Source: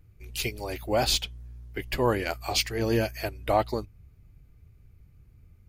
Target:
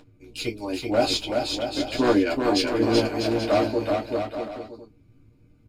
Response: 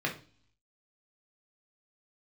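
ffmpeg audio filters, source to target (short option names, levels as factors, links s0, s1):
-filter_complex "[0:a]lowshelf=f=400:g=9,acompressor=mode=upward:threshold=0.0112:ratio=2.5,aphaser=in_gain=1:out_gain=1:delay=1.6:decay=0.24:speed=0.43:type=sinusoidal,aeval=exprs='0.562*(cos(1*acos(clip(val(0)/0.562,-1,1)))-cos(1*PI/2))+0.0501*(cos(3*acos(clip(val(0)/0.562,-1,1)))-cos(3*PI/2))':c=same,aeval=exprs='0.188*(abs(mod(val(0)/0.188+3,4)-2)-1)':c=same,aecho=1:1:380|646|832.2|962.5|1054:0.631|0.398|0.251|0.158|0.1[s0];[1:a]atrim=start_sample=2205,atrim=end_sample=3528,asetrate=88200,aresample=44100[s1];[s0][s1]afir=irnorm=-1:irlink=0"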